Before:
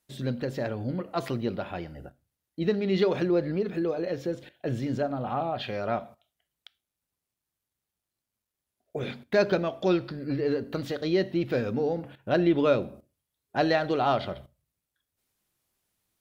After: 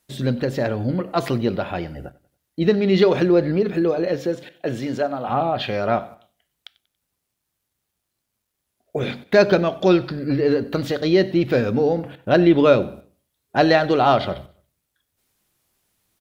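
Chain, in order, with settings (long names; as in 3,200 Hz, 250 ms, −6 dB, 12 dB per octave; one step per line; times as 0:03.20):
0:04.16–0:05.28: high-pass filter 170 Hz → 540 Hz 6 dB per octave
on a send: repeating echo 94 ms, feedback 38%, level −21.5 dB
on the sum: level +8.5 dB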